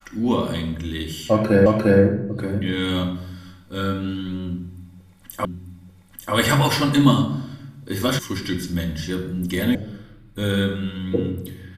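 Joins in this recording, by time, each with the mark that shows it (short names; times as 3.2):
1.66 repeat of the last 0.35 s
5.45 repeat of the last 0.89 s
8.19 sound cut off
9.75 sound cut off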